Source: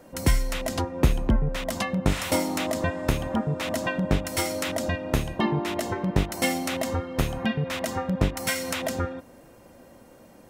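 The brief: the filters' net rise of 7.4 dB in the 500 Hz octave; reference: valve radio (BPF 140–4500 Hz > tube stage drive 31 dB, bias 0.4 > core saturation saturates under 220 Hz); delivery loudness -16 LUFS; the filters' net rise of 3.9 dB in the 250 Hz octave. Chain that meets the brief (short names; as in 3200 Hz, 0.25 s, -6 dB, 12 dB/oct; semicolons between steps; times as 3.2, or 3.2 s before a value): BPF 140–4500 Hz; bell 250 Hz +3.5 dB; bell 500 Hz +8 dB; tube stage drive 31 dB, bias 0.4; core saturation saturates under 220 Hz; gain +19 dB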